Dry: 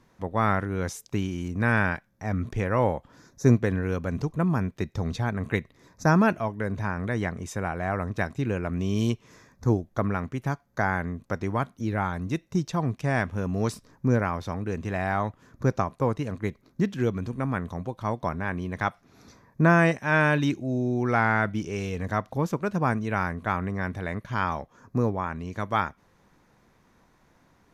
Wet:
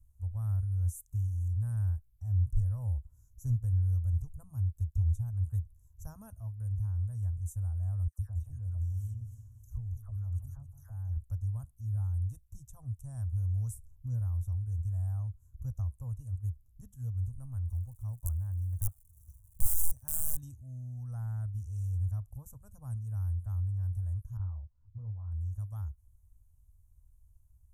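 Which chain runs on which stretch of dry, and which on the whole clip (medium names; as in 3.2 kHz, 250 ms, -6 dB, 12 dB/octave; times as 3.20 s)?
8.07–11.17 s: phase dispersion lows, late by 112 ms, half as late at 1.8 kHz + compression 4:1, threshold -28 dBFS + two-band feedback delay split 940 Hz, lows 169 ms, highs 273 ms, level -11 dB
17.69–20.39 s: integer overflow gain 15.5 dB + crackle 300 per s -44 dBFS
24.37–25.32 s: low-pass 1.6 kHz + detune thickener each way 28 cents
whole clip: inverse Chebyshev band-stop 160–4800 Hz, stop band 40 dB; tilt shelf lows +5.5 dB, about 1.4 kHz; trim +5 dB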